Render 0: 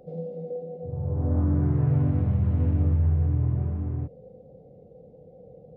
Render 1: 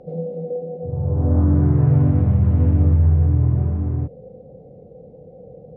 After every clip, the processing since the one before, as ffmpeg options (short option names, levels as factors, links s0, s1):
-af "aemphasis=mode=reproduction:type=75fm,volume=2.11"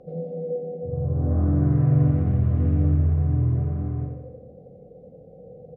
-filter_complex "[0:a]asuperstop=centerf=910:order=4:qfactor=5.5,asplit=2[s0][s1];[s1]aecho=0:1:88|176|264|352|440|528|616:0.562|0.298|0.158|0.0837|0.0444|0.0235|0.0125[s2];[s0][s2]amix=inputs=2:normalize=0,volume=0.562"